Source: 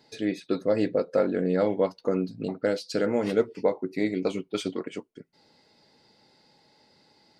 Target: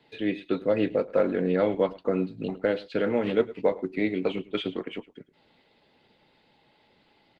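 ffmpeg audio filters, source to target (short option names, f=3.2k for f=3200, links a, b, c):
-filter_complex "[0:a]acrossover=split=110|580|2700[a][b][c][d];[a]acrusher=samples=11:mix=1:aa=0.000001[e];[e][b][c][d]amix=inputs=4:normalize=0,acrossover=split=5000[f][g];[g]acompressor=threshold=-56dB:ratio=4:attack=1:release=60[h];[f][h]amix=inputs=2:normalize=0,highshelf=f=4.2k:t=q:w=3:g=-10,aecho=1:1:107:0.106" -ar 48000 -c:a libopus -b:a 16k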